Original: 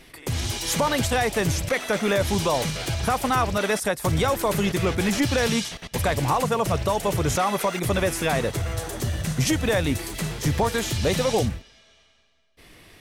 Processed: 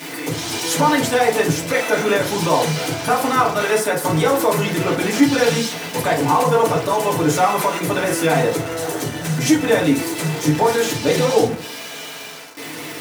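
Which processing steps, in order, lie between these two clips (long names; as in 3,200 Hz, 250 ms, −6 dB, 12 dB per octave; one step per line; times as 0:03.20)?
converter with a step at zero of −29 dBFS
high-pass filter 150 Hz 24 dB per octave
feedback delay network reverb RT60 0.45 s, low-frequency decay 0.8×, high-frequency decay 0.45×, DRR −4 dB
level −1 dB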